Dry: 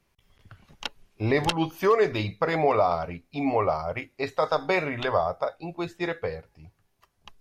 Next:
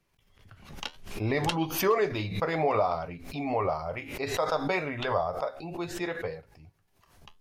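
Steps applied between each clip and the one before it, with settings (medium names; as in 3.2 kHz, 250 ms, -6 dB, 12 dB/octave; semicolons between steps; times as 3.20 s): flange 0.63 Hz, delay 6.2 ms, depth 7.6 ms, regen -66%; swell ahead of each attack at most 78 dB/s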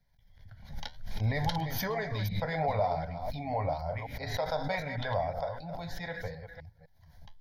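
chunks repeated in reverse 254 ms, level -9 dB; bass shelf 140 Hz +9.5 dB; static phaser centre 1.8 kHz, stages 8; trim -2 dB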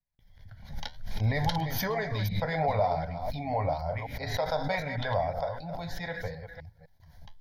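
gate with hold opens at -54 dBFS; trim +2.5 dB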